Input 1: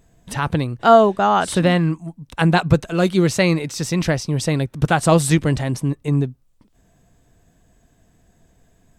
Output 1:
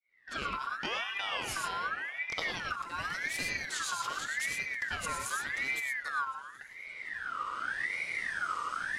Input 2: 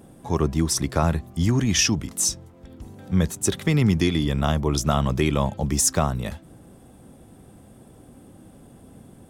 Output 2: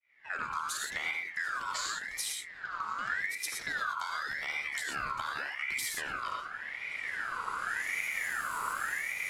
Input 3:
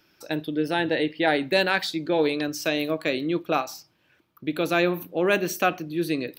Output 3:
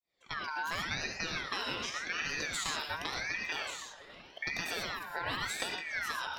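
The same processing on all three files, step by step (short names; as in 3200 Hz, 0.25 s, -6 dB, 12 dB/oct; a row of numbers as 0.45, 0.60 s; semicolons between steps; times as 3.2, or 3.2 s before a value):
opening faded in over 0.71 s; recorder AGC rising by 15 dB/s; low-pass opened by the level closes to 2500 Hz, open at -14 dBFS; bell 480 Hz -14.5 dB 1.3 oct; compressor 10:1, threshold -32 dBFS; on a send: delay with a stepping band-pass 0.161 s, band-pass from 240 Hz, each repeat 0.7 oct, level -5 dB; on the sum: non-linear reverb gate 0.14 s rising, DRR 1 dB; ring modulator with a swept carrier 1700 Hz, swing 30%, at 0.87 Hz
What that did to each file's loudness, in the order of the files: -16.0, -12.0, -10.5 LU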